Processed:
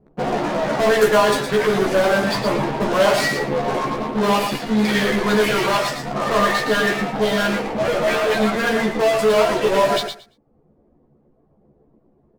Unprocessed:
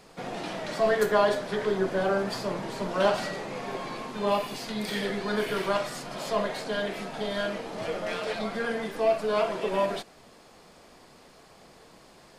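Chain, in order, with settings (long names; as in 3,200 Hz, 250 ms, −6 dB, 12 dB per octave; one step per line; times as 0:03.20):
0:06.15–0:06.94: hollow resonant body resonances 1,200/1,800 Hz, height 17 dB, ringing for 95 ms
reverb reduction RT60 1.1 s
low-pass that shuts in the quiet parts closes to 310 Hz, open at −25 dBFS
in parallel at −10.5 dB: fuzz pedal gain 39 dB, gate −48 dBFS
on the sum: double-tracking delay 14 ms −3.5 dB
on a send: repeating echo 114 ms, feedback 16%, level −7 dB
on the sum: level +2 dB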